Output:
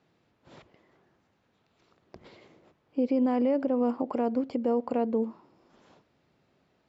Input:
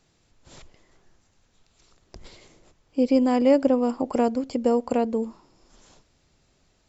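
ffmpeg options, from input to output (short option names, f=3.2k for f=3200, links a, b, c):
-af "alimiter=limit=-18dB:level=0:latency=1:release=78,highpass=140,lowpass=3.7k,highshelf=f=2.7k:g=-8"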